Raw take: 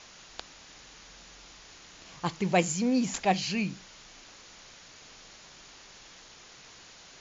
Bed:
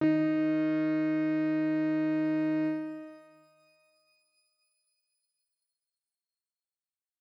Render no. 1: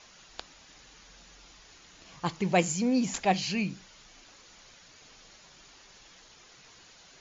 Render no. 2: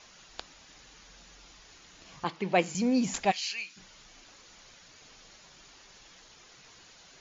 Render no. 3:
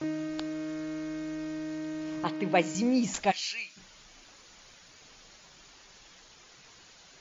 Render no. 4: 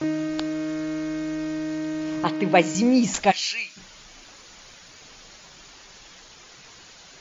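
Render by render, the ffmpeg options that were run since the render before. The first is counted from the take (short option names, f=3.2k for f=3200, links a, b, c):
-af "afftdn=nr=6:nf=-52"
-filter_complex "[0:a]asettb=1/sr,asplit=3[a][b][c];[a]atrim=end=2.244[d];[b]atrim=start=2.24:end=2.75,asetpts=PTS-STARTPTS,afade=t=in:d=0.004:c=qsin,afade=t=out:st=0.506:d=0.004:c=qsin,acrossover=split=200 4900:gain=0.158 1 0.126[e][f][g];[e][f][g]amix=inputs=3:normalize=0[h];[c]atrim=start=2.746[i];[d][h]acrossfade=d=0.004:c1=hsin:c2=qsin[j];[j][i]acrossfade=d=0.004:c1=qsin:c2=hsin,asplit=3[k][l][m];[k]afade=t=out:st=3.3:d=0.02[n];[l]highpass=1.5k,afade=t=in:st=3.3:d=0.02,afade=t=out:st=3.76:d=0.02[o];[m]afade=t=in:st=3.76:d=0.02[p];[n][o][p]amix=inputs=3:normalize=0"
-filter_complex "[1:a]volume=-7.5dB[a];[0:a][a]amix=inputs=2:normalize=0"
-af "volume=7.5dB"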